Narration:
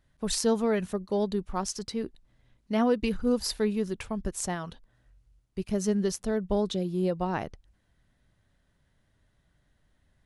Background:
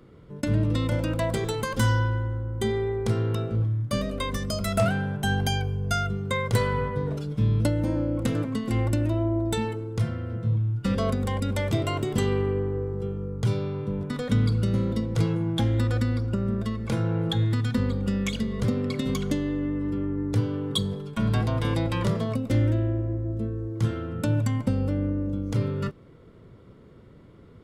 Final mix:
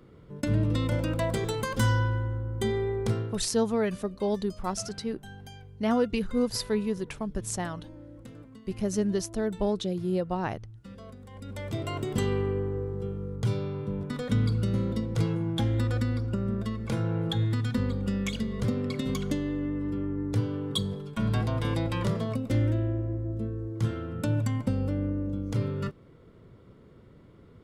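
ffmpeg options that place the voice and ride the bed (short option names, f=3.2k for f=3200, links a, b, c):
-filter_complex "[0:a]adelay=3100,volume=-0.5dB[a];[1:a]volume=15.5dB,afade=t=out:st=3.08:d=0.32:silence=0.11885,afade=t=in:st=11.3:d=0.88:silence=0.133352[b];[a][b]amix=inputs=2:normalize=0"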